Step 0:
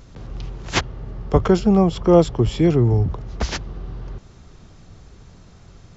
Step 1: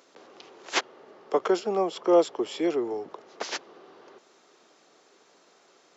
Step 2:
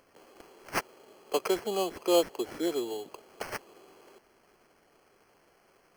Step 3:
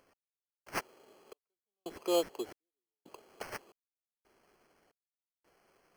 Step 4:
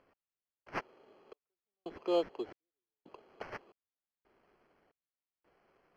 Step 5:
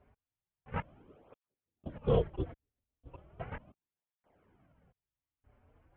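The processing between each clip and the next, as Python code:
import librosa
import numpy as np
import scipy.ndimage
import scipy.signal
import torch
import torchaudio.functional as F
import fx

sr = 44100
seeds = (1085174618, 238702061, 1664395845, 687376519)

y1 = scipy.signal.sosfilt(scipy.signal.butter(4, 350.0, 'highpass', fs=sr, output='sos'), x)
y1 = F.gain(torch.from_numpy(y1), -4.5).numpy()
y2 = fx.sample_hold(y1, sr, seeds[0], rate_hz=3700.0, jitter_pct=0)
y2 = F.gain(torch.from_numpy(y2), -4.5).numpy()
y3 = fx.step_gate(y2, sr, bpm=113, pattern='x....xxxx', floor_db=-60.0, edge_ms=4.5)
y3 = F.gain(torch.from_numpy(y3), -5.5).numpy()
y4 = fx.air_absorb(y3, sr, metres=250.0)
y5 = fx.lpc_vocoder(y4, sr, seeds[1], excitation='whisper', order=8)
y5 = fx.tilt_eq(y5, sr, slope=-2.0)
y5 = fx.flanger_cancel(y5, sr, hz=0.36, depth_ms=6.3)
y5 = F.gain(torch.from_numpy(y5), 3.5).numpy()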